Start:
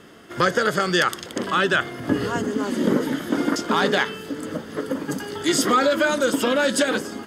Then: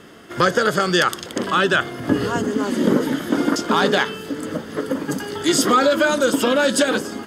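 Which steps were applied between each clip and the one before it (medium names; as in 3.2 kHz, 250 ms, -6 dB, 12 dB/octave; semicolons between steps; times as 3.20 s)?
dynamic bell 2 kHz, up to -4 dB, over -39 dBFS, Q 3.6; trim +3 dB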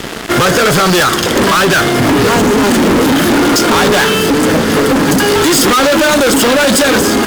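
compression 1.5:1, threshold -28 dBFS, peak gain reduction 6 dB; fuzz box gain 38 dB, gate -43 dBFS; trim +5 dB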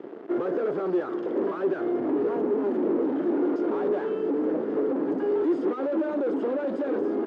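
ladder band-pass 410 Hz, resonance 50%; trim -5.5 dB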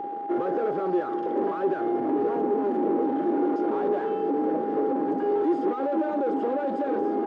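whistle 810 Hz -31 dBFS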